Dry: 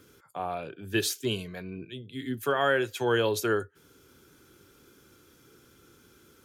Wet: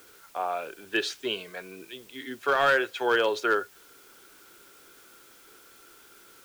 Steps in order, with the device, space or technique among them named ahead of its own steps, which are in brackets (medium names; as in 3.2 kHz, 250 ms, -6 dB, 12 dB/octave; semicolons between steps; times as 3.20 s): drive-through speaker (band-pass 470–3600 Hz; peaking EQ 1.4 kHz +4 dB 0.24 oct; hard clipper -19.5 dBFS, distortion -18 dB; white noise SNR 25 dB); trim +4 dB